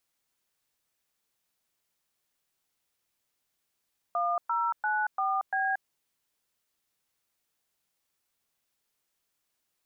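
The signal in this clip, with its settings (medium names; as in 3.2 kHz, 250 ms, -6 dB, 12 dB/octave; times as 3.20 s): DTMF "1094B", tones 230 ms, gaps 114 ms, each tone -28 dBFS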